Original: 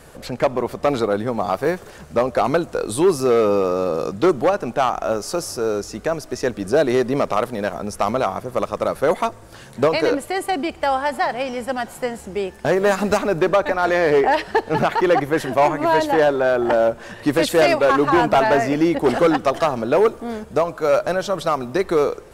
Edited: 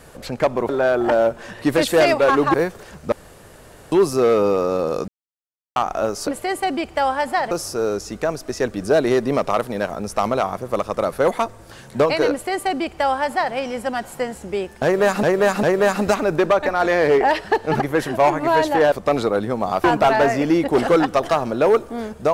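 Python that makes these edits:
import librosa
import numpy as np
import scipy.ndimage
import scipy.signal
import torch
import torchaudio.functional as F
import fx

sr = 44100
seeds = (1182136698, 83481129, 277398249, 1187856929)

y = fx.edit(x, sr, fx.swap(start_s=0.69, length_s=0.92, other_s=16.3, other_length_s=1.85),
    fx.room_tone_fill(start_s=2.19, length_s=0.8),
    fx.silence(start_s=4.15, length_s=0.68),
    fx.duplicate(start_s=10.13, length_s=1.24, to_s=5.34),
    fx.repeat(start_s=12.66, length_s=0.4, count=3),
    fx.cut(start_s=14.83, length_s=0.35), tone=tone)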